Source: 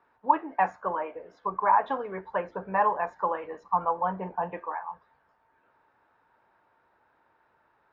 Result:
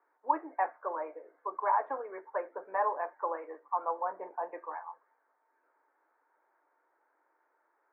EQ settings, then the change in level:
Chebyshev band-pass filter 300–2,200 Hz, order 4
dynamic equaliser 620 Hz, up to +3 dB, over −39 dBFS, Q 2.7
high-frequency loss of the air 82 metres
−6.0 dB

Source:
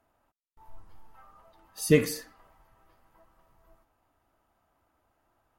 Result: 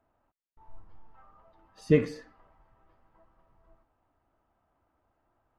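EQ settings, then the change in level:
head-to-tape spacing loss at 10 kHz 26 dB
0.0 dB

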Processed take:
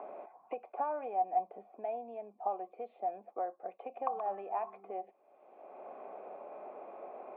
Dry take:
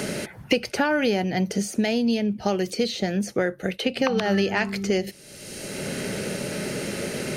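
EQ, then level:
formant resonators in series a
high-pass filter 300 Hz 24 dB per octave
high-frequency loss of the air 75 metres
+3.0 dB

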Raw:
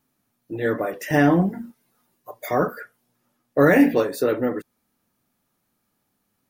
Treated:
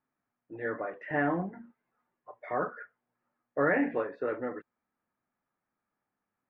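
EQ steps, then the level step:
low-pass filter 2,000 Hz 24 dB per octave
low-shelf EQ 480 Hz −11.5 dB
−5.5 dB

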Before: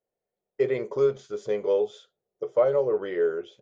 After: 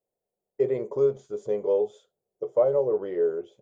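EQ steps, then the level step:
flat-topped bell 2,700 Hz −11 dB 2.5 octaves
0.0 dB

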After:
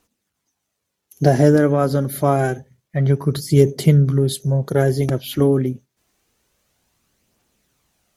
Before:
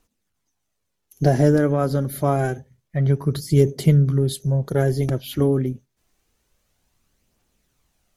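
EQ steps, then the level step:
high-pass filter 110 Hz 6 dB per octave
+4.0 dB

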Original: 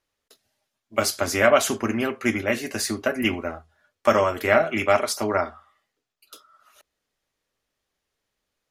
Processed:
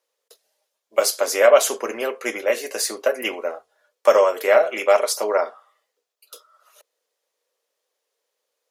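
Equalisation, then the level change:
high-pass with resonance 490 Hz, resonance Q 5
parametric band 1,000 Hz +4.5 dB 0.41 octaves
high-shelf EQ 3,300 Hz +10 dB
−4.5 dB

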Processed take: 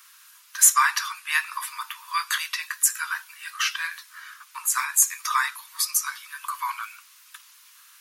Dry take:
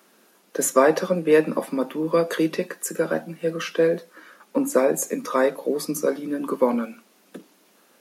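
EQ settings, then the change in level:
Butterworth high-pass 970 Hz 96 dB per octave
high-shelf EQ 2,100 Hz +8 dB
+2.0 dB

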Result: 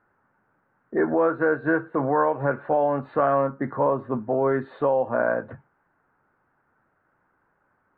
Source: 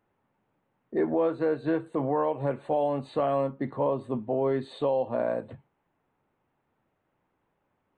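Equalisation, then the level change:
low-pass with resonance 1,500 Hz, resonance Q 4.7
+3.0 dB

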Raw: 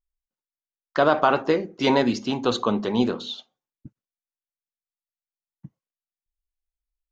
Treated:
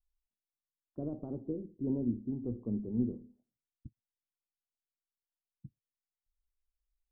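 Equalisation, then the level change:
transistor ladder low-pass 260 Hz, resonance 20%
high-frequency loss of the air 470 metres
parametric band 170 Hz −13 dB 1.1 octaves
+7.0 dB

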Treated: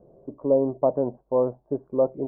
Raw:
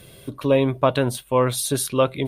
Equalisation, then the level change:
Butterworth low-pass 820 Hz 36 dB per octave
parametric band 100 Hz −11.5 dB 0.99 octaves
low-shelf EQ 220 Hz −7.5 dB
0.0 dB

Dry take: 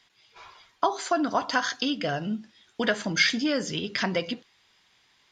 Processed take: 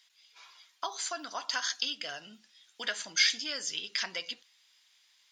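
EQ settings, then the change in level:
first difference
high-shelf EQ 7,300 Hz −5.5 dB
+5.5 dB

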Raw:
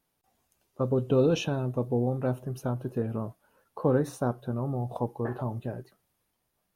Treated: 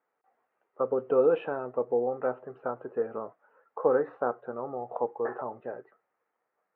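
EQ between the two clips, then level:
high-frequency loss of the air 240 metres
loudspeaker in its box 440–2,200 Hz, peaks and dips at 470 Hz +8 dB, 800 Hz +4 dB, 1,300 Hz +8 dB, 1,900 Hz +5 dB
0.0 dB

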